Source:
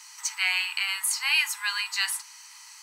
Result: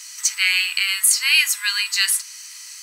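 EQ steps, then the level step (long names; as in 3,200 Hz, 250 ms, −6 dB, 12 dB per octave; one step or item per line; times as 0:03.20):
high-pass filter 1,300 Hz 24 dB per octave
high-shelf EQ 2,900 Hz +8.5 dB
+3.5 dB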